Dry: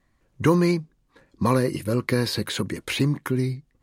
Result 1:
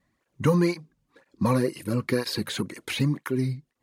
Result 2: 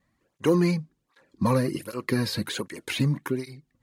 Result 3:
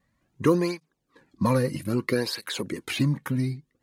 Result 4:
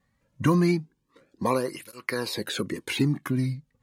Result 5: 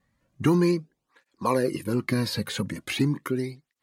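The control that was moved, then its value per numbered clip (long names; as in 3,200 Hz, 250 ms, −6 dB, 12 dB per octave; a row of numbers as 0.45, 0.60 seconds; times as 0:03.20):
through-zero flanger with one copy inverted, nulls at: 2, 1.3, 0.62, 0.26, 0.4 Hertz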